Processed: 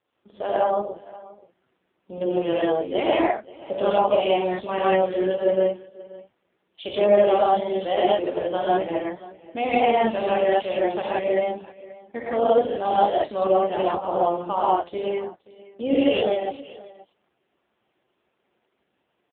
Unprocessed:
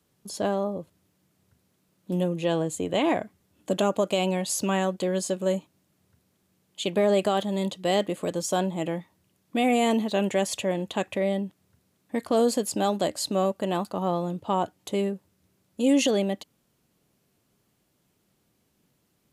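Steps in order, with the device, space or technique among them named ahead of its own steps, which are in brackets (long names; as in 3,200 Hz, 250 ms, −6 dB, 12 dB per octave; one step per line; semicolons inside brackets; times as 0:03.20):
reverb whose tail is shaped and stops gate 190 ms rising, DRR −7.5 dB
0:00.63–0:02.21: dynamic equaliser 320 Hz, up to −6 dB, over −46 dBFS, Q 6.1
satellite phone (band-pass filter 380–3,400 Hz; single-tap delay 530 ms −20 dB; AMR narrowband 5.9 kbit/s 8,000 Hz)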